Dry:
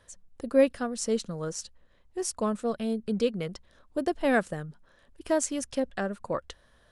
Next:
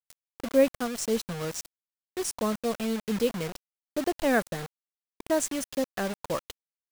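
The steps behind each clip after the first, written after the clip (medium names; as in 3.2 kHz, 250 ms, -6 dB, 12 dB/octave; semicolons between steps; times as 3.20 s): bit crusher 6-bit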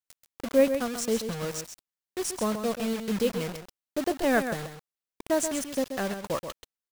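delay 132 ms -8.5 dB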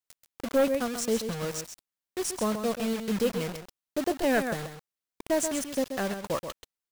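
hard clipper -18.5 dBFS, distortion -14 dB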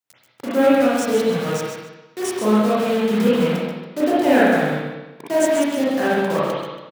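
high-pass 120 Hz 24 dB/octave; delay 148 ms -12 dB; reverberation RT60 1.1 s, pre-delay 33 ms, DRR -9 dB; trim +1.5 dB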